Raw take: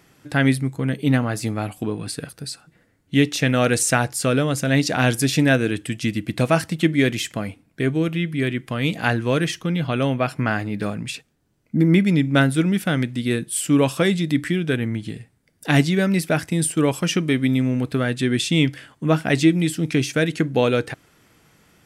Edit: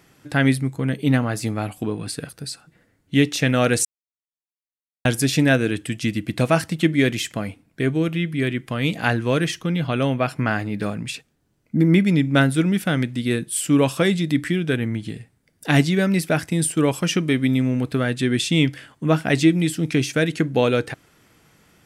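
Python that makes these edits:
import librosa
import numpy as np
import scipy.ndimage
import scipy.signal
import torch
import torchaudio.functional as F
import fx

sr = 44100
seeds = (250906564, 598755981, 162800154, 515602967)

y = fx.edit(x, sr, fx.silence(start_s=3.85, length_s=1.2), tone=tone)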